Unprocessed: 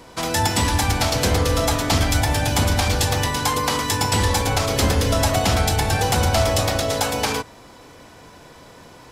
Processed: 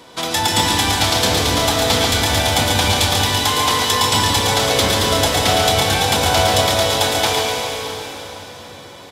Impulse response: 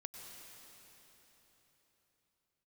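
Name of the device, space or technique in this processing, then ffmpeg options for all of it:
PA in a hall: -filter_complex "[0:a]highpass=f=190:p=1,equalizer=f=3.5k:t=o:w=0.4:g=8,aecho=1:1:139:0.562[a];[1:a]atrim=start_sample=2205[b];[a][b]afir=irnorm=-1:irlink=0,volume=7dB"

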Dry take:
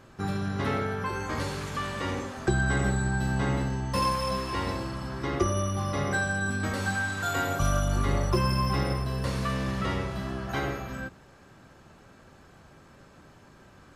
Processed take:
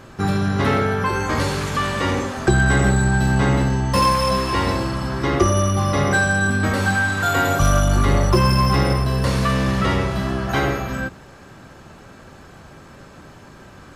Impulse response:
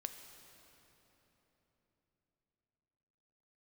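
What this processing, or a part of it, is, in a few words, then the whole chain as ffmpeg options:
parallel distortion: -filter_complex "[0:a]asettb=1/sr,asplit=3[a][b][c];[a]atrim=end=6.474[d];[b]atrim=start=6.47:end=7.45,asetpts=PTS-STARTPTS,afade=t=in:d=0.004:c=qsin,afade=t=out:st=0.976:d=0.004:c=qsin,equalizer=f=6.6k:w=0.63:g=-3.5[e];[c]atrim=start=7.446[f];[d][e]acrossfade=d=0.004:c1=hsin:c2=qsin[g];[g][f]acrossfade=d=0.004:c1=qsin:c2=hsin,asplit=2[h][i];[i]asoftclip=type=hard:threshold=-26dB,volume=-5.5dB[j];[h][j]amix=inputs=2:normalize=0,volume=7dB"

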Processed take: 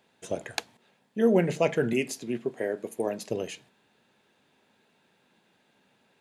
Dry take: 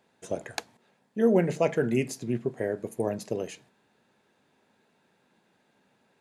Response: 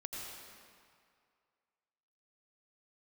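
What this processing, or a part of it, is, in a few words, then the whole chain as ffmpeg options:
presence and air boost: -filter_complex "[0:a]asettb=1/sr,asplit=3[a][b][c];[a]atrim=end=1.934[d];[b]atrim=start=1.93:end=3.3,asetpts=PTS-STARTPTS,afade=t=in:d=0.004:c=qsin,afade=t=out:st=1.366:d=0.004:c=qsin,highpass=220[e];[c]atrim=start=3.296[f];[d][e]acrossfade=d=0.004:c1=hsin:c2=qsin[g];[g][f]acrossfade=d=0.004:c1=qsin:c2=hsin,equalizer=f=3.1k:t=o:w=1:g=5.5,highshelf=f=11k:g=4"

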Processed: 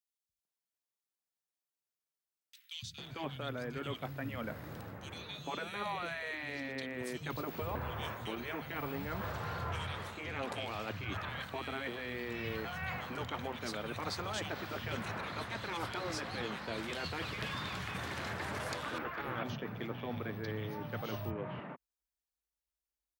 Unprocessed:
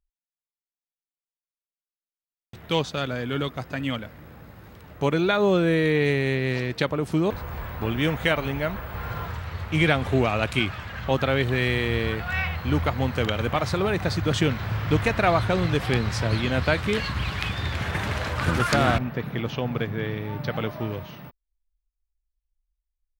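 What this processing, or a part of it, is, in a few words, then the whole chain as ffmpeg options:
compression on the reversed sound: -filter_complex "[0:a]afftfilt=real='re*lt(hypot(re,im),0.355)':imag='im*lt(hypot(re,im),0.355)':win_size=1024:overlap=0.75,highpass=f=84:w=0.5412,highpass=f=84:w=1.3066,areverse,acompressor=threshold=-35dB:ratio=16,areverse,acrossover=split=180|2500[a][b][c];[a]adelay=290[d];[b]adelay=450[e];[d][e][c]amix=inputs=3:normalize=0,volume=1dB"

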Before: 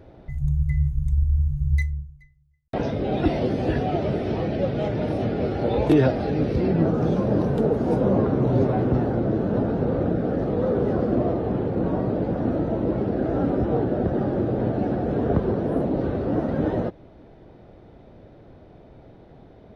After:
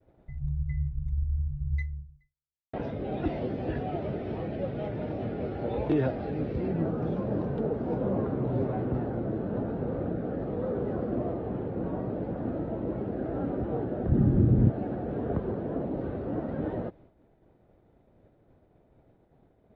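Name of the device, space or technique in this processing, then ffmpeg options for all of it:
hearing-loss simulation: -filter_complex "[0:a]asplit=3[a][b][c];[a]afade=t=out:st=14.08:d=0.02[d];[b]asubboost=boost=10.5:cutoff=210,afade=t=in:st=14.08:d=0.02,afade=t=out:st=14.68:d=0.02[e];[c]afade=t=in:st=14.68:d=0.02[f];[d][e][f]amix=inputs=3:normalize=0,lowpass=3k,agate=range=-33dB:threshold=-41dB:ratio=3:detection=peak,volume=-8.5dB"

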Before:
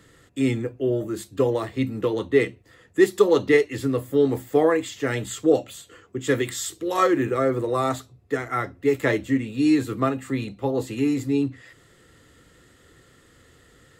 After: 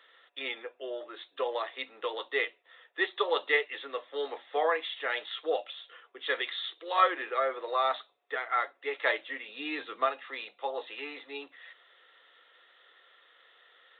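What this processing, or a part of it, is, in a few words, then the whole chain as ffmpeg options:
musical greeting card: -filter_complex "[0:a]asettb=1/sr,asplit=3[a][b][c];[a]atrim=end=9.484[d];[b]atrim=start=9.48:end=10.06,asetpts=PTS-STARTPTS,afade=t=in:d=0.004:c=qsin,afade=t=out:st=0.576:d=0.004:c=qsin,bass=f=250:g=13,treble=f=4k:g=2[e];[c]atrim=start=10.056[f];[d][e]acrossfade=d=0.004:c1=hsin:c2=qsin[g];[g][f]acrossfade=d=0.004:c1=qsin:c2=hsin,aresample=8000,aresample=44100,highpass=f=610:w=0.5412,highpass=f=610:w=1.3066,equalizer=f=3.7k:t=o:w=0.37:g=7.5,volume=-2dB"

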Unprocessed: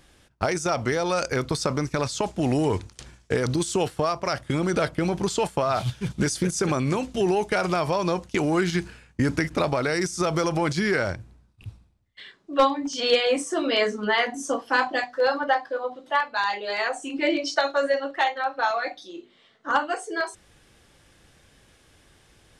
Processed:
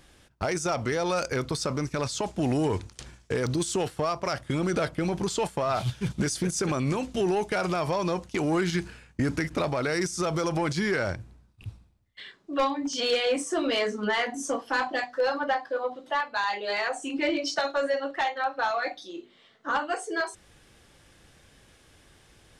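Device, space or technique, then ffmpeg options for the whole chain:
soft clipper into limiter: -af "asoftclip=type=tanh:threshold=-14.5dB,alimiter=limit=-18.5dB:level=0:latency=1:release=257"

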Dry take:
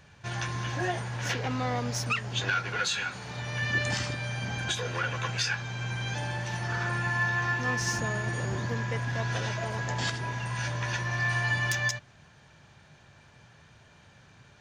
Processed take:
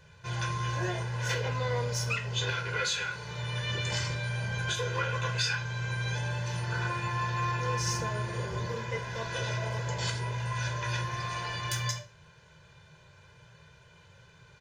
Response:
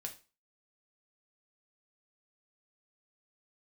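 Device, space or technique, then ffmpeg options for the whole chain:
microphone above a desk: -filter_complex "[0:a]aecho=1:1:2:0.77[a];[1:a]atrim=start_sample=2205[b];[a][b]afir=irnorm=-1:irlink=0,afftfilt=real='re*lt(hypot(re,im),0.355)':imag='im*lt(hypot(re,im),0.355)':win_size=1024:overlap=0.75"

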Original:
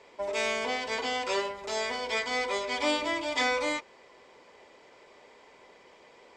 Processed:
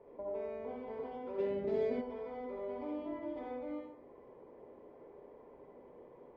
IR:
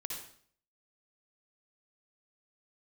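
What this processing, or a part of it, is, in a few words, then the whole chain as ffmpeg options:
television next door: -filter_complex "[0:a]acompressor=threshold=-41dB:ratio=3,lowpass=530[a];[1:a]atrim=start_sample=2205[b];[a][b]afir=irnorm=-1:irlink=0,asplit=3[c][d][e];[c]afade=t=out:st=1.38:d=0.02[f];[d]equalizer=f=125:t=o:w=1:g=11,equalizer=f=250:t=o:w=1:g=10,equalizer=f=500:t=o:w=1:g=6,equalizer=f=1k:t=o:w=1:g=-7,equalizer=f=2k:t=o:w=1:g=9,equalizer=f=4k:t=o:w=1:g=10,equalizer=f=8k:t=o:w=1:g=9,afade=t=in:st=1.38:d=0.02,afade=t=out:st=2:d=0.02[g];[e]afade=t=in:st=2:d=0.02[h];[f][g][h]amix=inputs=3:normalize=0,volume=5dB"

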